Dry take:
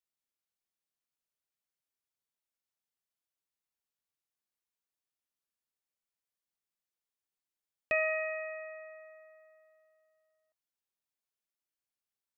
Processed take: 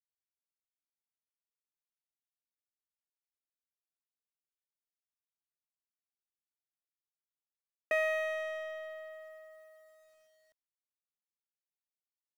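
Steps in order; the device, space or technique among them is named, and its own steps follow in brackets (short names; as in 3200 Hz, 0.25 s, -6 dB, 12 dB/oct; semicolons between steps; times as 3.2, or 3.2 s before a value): elliptic band-pass 130–2100 Hz, stop band 70 dB; phone line with mismatched companding (BPF 330–3200 Hz; G.711 law mismatch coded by mu)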